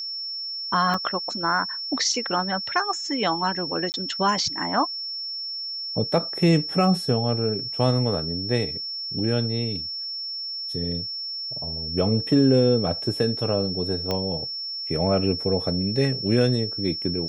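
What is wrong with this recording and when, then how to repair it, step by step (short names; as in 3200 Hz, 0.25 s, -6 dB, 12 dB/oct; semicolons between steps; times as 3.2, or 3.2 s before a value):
tone 5400 Hz -29 dBFS
0.94 gap 3.4 ms
3.92–3.94 gap 19 ms
14.11 pop -12 dBFS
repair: de-click; notch 5400 Hz, Q 30; interpolate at 0.94, 3.4 ms; interpolate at 3.92, 19 ms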